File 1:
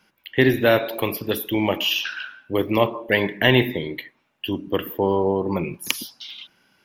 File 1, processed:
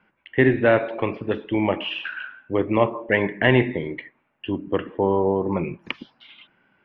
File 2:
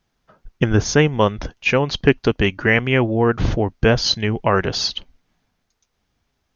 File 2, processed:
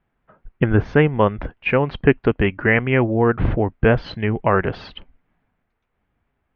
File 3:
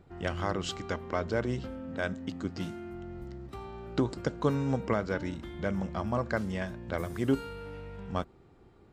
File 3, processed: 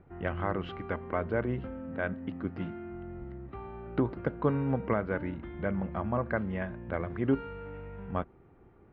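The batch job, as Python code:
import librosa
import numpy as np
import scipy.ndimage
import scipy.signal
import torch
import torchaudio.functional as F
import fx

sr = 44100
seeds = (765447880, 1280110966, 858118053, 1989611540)

y = scipy.signal.sosfilt(scipy.signal.butter(4, 2400.0, 'lowpass', fs=sr, output='sos'), x)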